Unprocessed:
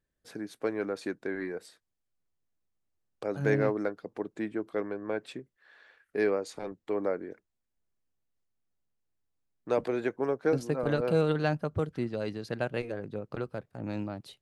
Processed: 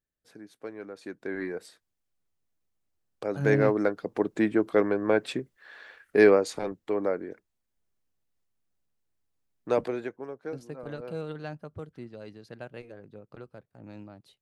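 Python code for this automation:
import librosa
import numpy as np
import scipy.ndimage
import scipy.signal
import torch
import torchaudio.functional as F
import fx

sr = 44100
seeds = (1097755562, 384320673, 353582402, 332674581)

y = fx.gain(x, sr, db=fx.line((0.95, -8.5), (1.38, 2.0), (3.31, 2.0), (4.33, 9.5), (6.31, 9.5), (6.96, 2.5), (9.79, 2.5), (10.27, -10.0)))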